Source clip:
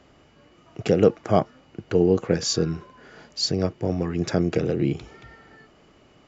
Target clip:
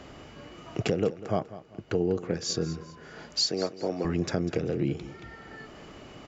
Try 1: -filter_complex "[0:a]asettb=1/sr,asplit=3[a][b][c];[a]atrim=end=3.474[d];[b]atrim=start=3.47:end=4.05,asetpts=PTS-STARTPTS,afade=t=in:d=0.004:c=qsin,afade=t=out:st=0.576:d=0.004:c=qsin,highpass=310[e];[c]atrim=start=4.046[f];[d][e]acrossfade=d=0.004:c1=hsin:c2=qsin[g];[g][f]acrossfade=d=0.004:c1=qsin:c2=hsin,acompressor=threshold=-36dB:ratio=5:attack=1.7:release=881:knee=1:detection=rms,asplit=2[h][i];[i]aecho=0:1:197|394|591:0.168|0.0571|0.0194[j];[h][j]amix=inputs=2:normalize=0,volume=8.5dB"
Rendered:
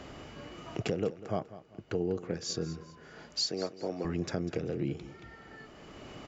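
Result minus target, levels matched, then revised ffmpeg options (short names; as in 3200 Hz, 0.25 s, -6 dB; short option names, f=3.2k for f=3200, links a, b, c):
compressor: peak gain reduction +5 dB
-filter_complex "[0:a]asettb=1/sr,asplit=3[a][b][c];[a]atrim=end=3.474[d];[b]atrim=start=3.47:end=4.05,asetpts=PTS-STARTPTS,afade=t=in:d=0.004:c=qsin,afade=t=out:st=0.576:d=0.004:c=qsin,highpass=310[e];[c]atrim=start=4.046[f];[d][e]acrossfade=d=0.004:c1=hsin:c2=qsin[g];[g][f]acrossfade=d=0.004:c1=qsin:c2=hsin,acompressor=threshold=-29.5dB:ratio=5:attack=1.7:release=881:knee=1:detection=rms,asplit=2[h][i];[i]aecho=0:1:197|394|591:0.168|0.0571|0.0194[j];[h][j]amix=inputs=2:normalize=0,volume=8.5dB"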